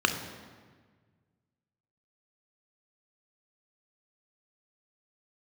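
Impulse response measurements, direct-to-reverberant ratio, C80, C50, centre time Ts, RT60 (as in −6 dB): 5.5 dB, 10.0 dB, 8.0 dB, 25 ms, 1.5 s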